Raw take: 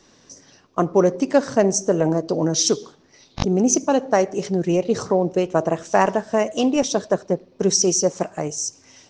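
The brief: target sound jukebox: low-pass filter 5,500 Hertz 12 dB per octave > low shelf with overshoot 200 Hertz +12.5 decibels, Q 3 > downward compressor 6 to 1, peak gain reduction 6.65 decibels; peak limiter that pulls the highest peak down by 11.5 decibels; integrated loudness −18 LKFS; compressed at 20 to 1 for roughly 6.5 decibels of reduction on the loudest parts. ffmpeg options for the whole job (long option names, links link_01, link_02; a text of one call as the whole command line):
ffmpeg -i in.wav -af "acompressor=threshold=-17dB:ratio=20,alimiter=limit=-17.5dB:level=0:latency=1,lowpass=5500,lowshelf=frequency=200:width_type=q:width=3:gain=12.5,acompressor=threshold=-20dB:ratio=6,volume=9dB" out.wav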